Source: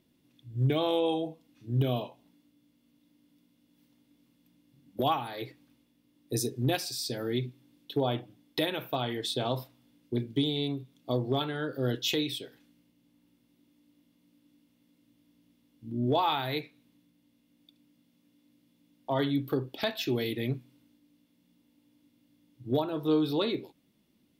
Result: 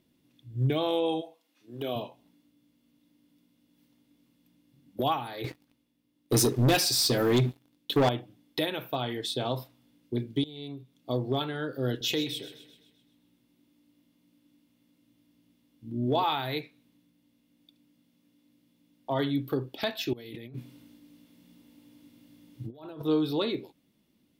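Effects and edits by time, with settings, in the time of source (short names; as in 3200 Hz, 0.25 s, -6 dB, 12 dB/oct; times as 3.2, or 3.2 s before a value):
1.2–1.95 HPF 860 Hz -> 290 Hz
5.44–8.09 sample leveller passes 3
10.44–11.17 fade in, from -19 dB
11.91–16.24 split-band echo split 640 Hz, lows 94 ms, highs 0.129 s, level -13.5 dB
20.13–23.02 negative-ratio compressor -43 dBFS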